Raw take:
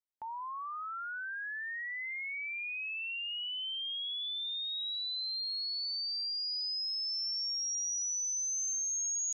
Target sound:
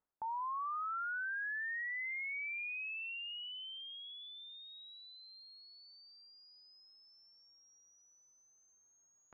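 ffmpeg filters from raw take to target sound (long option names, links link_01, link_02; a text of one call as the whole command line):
ffmpeg -i in.wav -af "lowpass=frequency=1500:width=0.5412,lowpass=frequency=1500:width=1.3066,areverse,acompressor=threshold=-56dB:ratio=6,areverse,volume=16.5dB" out.wav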